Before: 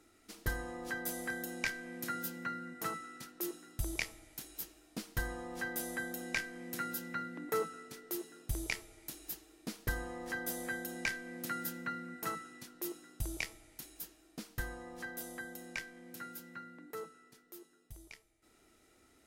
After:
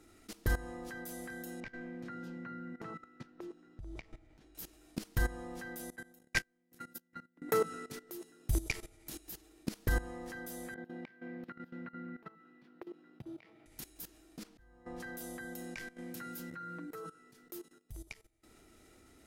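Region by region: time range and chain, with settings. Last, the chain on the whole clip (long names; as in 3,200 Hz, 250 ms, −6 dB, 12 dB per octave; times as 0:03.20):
0:01.60–0:04.55: downward compressor 3 to 1, threshold −45 dBFS + head-to-tape spacing loss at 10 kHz 26 dB
0:05.90–0:07.42: noise gate −37 dBFS, range −27 dB + high-shelf EQ 7,400 Hz +3 dB
0:10.74–0:13.66: high-pass filter 150 Hz 24 dB per octave + downward compressor 10 to 1, threshold −47 dBFS + high-frequency loss of the air 370 metres
0:14.43–0:15.00: low-pass filter 3,300 Hz 6 dB per octave + volume swells 496 ms
0:16.53–0:17.19: dynamic equaliser 1,400 Hz, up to +6 dB, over −59 dBFS, Q 2 + comb filter 6.3 ms, depth 82%
whole clip: low-shelf EQ 290 Hz +6.5 dB; output level in coarse steps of 17 dB; level +6.5 dB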